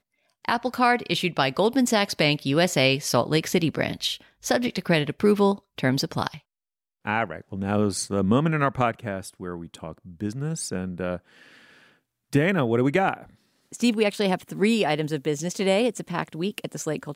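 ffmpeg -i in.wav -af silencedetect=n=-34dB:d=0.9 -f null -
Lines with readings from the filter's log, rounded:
silence_start: 11.17
silence_end: 12.33 | silence_duration: 1.16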